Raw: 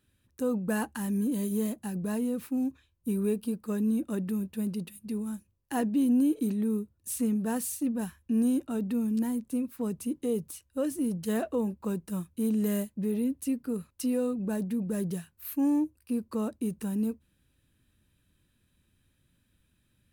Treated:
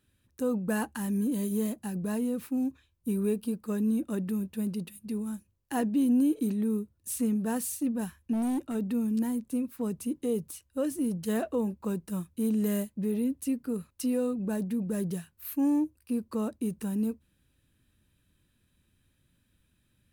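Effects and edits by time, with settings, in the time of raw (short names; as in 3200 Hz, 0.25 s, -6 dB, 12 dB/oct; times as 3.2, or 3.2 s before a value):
8.33–8.75 hard clip -26.5 dBFS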